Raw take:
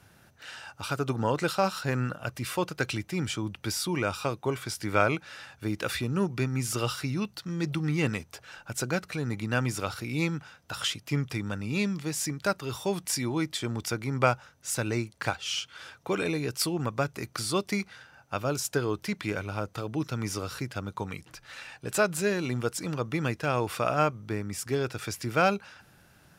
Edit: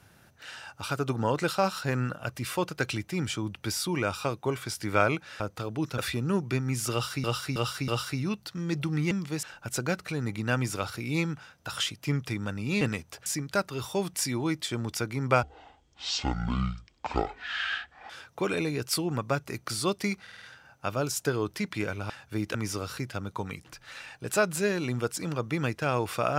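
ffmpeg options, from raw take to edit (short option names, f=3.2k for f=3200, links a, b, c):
-filter_complex "[0:a]asplit=18[a][b][c][d][e][f][g][h][i][j][k][l][m][n][o][p][q][r];[a]atrim=end=5.402[s];[b]atrim=start=19.578:end=20.162[t];[c]atrim=start=5.848:end=7.112[u];[d]atrim=start=6.788:end=7.112[v];[e]atrim=start=6.788:end=7.112[w];[f]atrim=start=6.788:end=8.022[x];[g]atrim=start=11.848:end=12.172[y];[h]atrim=start=8.468:end=11.852[z];[i]atrim=start=8.018:end=8.472[aa];[j]atrim=start=12.168:end=14.344[ab];[k]atrim=start=14.34:end=15.78,asetpts=PTS-STARTPTS,asetrate=23814,aresample=44100[ac];[l]atrim=start=15.776:end=17.952[ad];[m]atrim=start=17.898:end=17.952[ae];[n]atrim=start=17.898:end=17.952[af];[o]atrim=start=17.898:end=17.952[ag];[p]atrim=start=17.898:end=19.582[ah];[q]atrim=start=5.398:end=5.852[ai];[r]atrim=start=20.158[aj];[s][t]acrossfade=d=0.004:c1=hsin:c2=hsin[ak];[ak][u]acrossfade=d=0.004:c1=hsin:c2=hsin[al];[al][v]acrossfade=d=0.004:c1=hsin:c2=hsin[am];[am][w]acrossfade=d=0.004:c1=hsin:c2=hsin[an];[an][x]acrossfade=d=0.004:c1=hsin:c2=hsin[ao];[ao][y]acrossfade=d=0.004:c1=hsin:c2=hsin[ap];[ap][z]acrossfade=d=0.004:c1=hsin:c2=hsin[aq];[aq][aa]acrossfade=d=0.004:c1=hsin:c2=hsin[ar];[ar][ab]acrossfade=d=0.004:c1=hsin:c2=hsin[as];[as][ac]acrossfade=d=0.004:c1=hsin:c2=hsin[at];[at][ad]acrossfade=d=0.004:c1=hsin:c2=hsin[au];[au][ae]acrossfade=d=0.004:c1=hsin:c2=hsin[av];[av][af]acrossfade=d=0.004:c1=hsin:c2=hsin[aw];[aw][ag]acrossfade=d=0.004:c1=hsin:c2=hsin[ax];[ax][ah]acrossfade=d=0.004:c1=hsin:c2=hsin[ay];[ay][ai]acrossfade=d=0.004:c1=hsin:c2=hsin[az];[az][aj]acrossfade=d=0.004:c1=hsin:c2=hsin"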